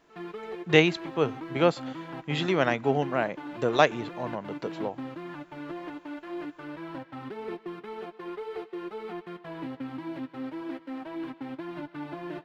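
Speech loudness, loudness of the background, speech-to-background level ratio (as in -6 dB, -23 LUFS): -26.5 LUFS, -39.0 LUFS, 12.5 dB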